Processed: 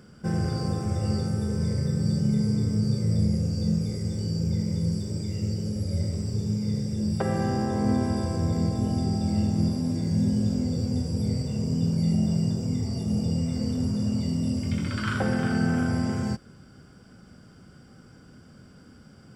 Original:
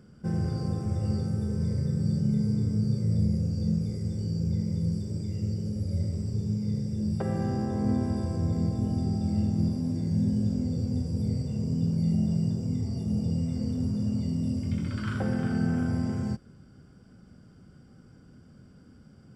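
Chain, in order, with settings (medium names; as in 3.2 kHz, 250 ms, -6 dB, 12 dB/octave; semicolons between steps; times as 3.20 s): bass shelf 480 Hz -8 dB; trim +9 dB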